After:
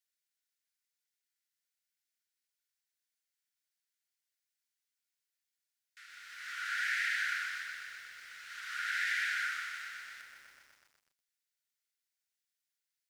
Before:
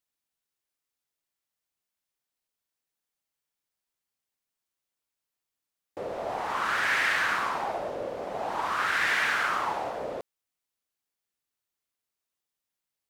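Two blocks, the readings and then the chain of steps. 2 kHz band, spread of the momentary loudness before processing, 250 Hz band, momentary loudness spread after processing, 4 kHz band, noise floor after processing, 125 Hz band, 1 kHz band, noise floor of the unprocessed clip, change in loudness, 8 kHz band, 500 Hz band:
-6.0 dB, 13 LU, under -35 dB, 17 LU, -6.5 dB, under -85 dBFS, under -30 dB, -16.0 dB, under -85 dBFS, -7.5 dB, -5.0 dB, under -40 dB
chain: compressor 5:1, threshold -29 dBFS, peak gain reduction 7 dB; rippled Chebyshev high-pass 1400 Hz, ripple 3 dB; lo-fi delay 0.124 s, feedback 80%, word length 10-bit, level -10 dB

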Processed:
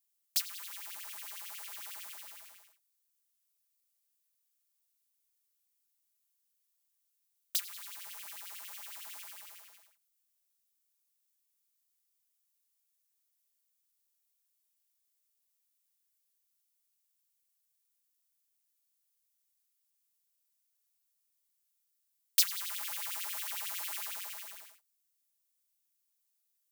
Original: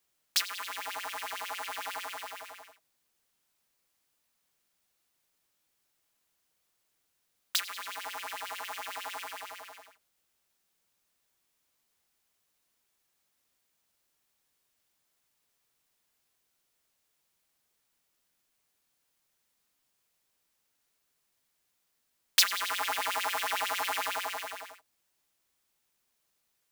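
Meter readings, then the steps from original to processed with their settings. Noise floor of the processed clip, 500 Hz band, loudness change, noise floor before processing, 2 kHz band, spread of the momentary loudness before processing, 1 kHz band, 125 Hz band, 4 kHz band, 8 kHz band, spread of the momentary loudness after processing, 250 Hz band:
-79 dBFS, -19.5 dB, -4.0 dB, -78 dBFS, -12.5 dB, 16 LU, -17.0 dB, n/a, -7.0 dB, -2.0 dB, 17 LU, under -15 dB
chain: pre-emphasis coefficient 0.9; in parallel at -9 dB: requantised 8-bit, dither none; on the sum: gain -4.5 dB

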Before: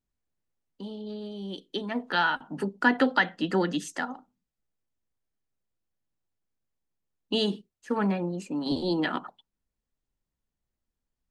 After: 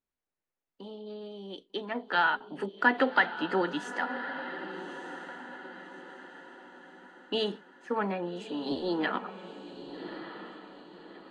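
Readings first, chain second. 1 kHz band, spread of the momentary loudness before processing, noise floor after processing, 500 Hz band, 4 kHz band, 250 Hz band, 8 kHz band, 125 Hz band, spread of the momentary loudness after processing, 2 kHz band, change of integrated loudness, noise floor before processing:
0.0 dB, 14 LU, under -85 dBFS, -1.0 dB, -3.5 dB, -5.5 dB, -10.0 dB, -9.0 dB, 22 LU, 0.0 dB, -3.0 dB, under -85 dBFS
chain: tone controls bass -13 dB, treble -12 dB; diffused feedback echo 1.213 s, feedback 44%, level -10.5 dB; AAC 48 kbps 24000 Hz

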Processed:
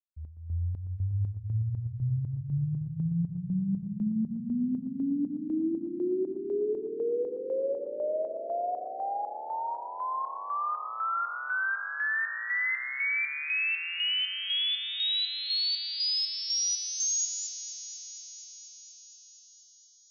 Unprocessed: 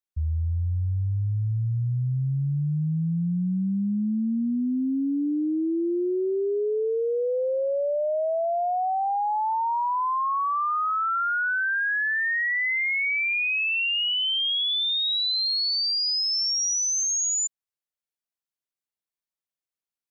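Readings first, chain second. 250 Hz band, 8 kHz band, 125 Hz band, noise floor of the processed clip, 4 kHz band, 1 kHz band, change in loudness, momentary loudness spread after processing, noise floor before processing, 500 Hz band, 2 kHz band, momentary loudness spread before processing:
-5.5 dB, n/a, -5.5 dB, -54 dBFS, -5.5 dB, -8.0 dB, -6.0 dB, 9 LU, under -85 dBFS, -6.0 dB, -6.0 dB, 5 LU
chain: opening faded in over 0.68 s; bell 900 Hz -4.5 dB 0.83 oct; chopper 2 Hz, depth 65%, duty 50%; on a send: echo with dull and thin repeats by turns 0.119 s, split 1700 Hz, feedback 89%, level -11 dB; on the sum: gain -3.5 dB

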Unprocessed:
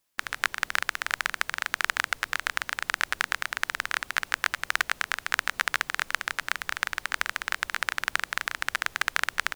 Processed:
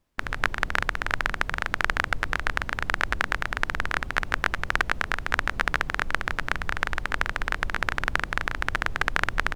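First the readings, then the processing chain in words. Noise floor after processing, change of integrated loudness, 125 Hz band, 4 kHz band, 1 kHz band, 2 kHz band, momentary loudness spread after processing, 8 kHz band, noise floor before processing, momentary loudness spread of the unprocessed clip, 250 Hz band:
-39 dBFS, +1.5 dB, n/a, -2.5 dB, +3.5 dB, +1.5 dB, 3 LU, -7.0 dB, -53 dBFS, 3 LU, +12.5 dB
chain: tilt -4 dB/oct; gain +4.5 dB

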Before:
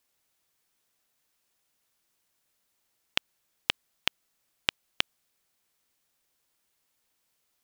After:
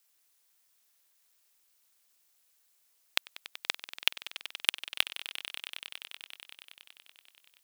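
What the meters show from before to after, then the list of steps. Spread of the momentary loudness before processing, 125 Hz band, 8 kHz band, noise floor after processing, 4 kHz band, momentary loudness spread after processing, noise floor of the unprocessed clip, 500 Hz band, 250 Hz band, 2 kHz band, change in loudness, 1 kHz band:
0 LU, under -10 dB, +5.0 dB, -71 dBFS, +1.5 dB, 18 LU, -76 dBFS, -4.5 dB, -8.0 dB, +1.0 dB, -1.0 dB, -2.0 dB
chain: ring modulator 200 Hz; low shelf 130 Hz -11 dB; hard clip -8 dBFS, distortion -14 dB; tilt +2 dB/oct; on a send: swelling echo 95 ms, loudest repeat 5, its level -16.5 dB; on the sum: gain +1.5 dB

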